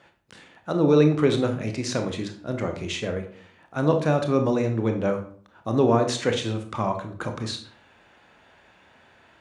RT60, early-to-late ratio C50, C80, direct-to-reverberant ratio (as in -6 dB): 0.50 s, 9.0 dB, 14.0 dB, 5.0 dB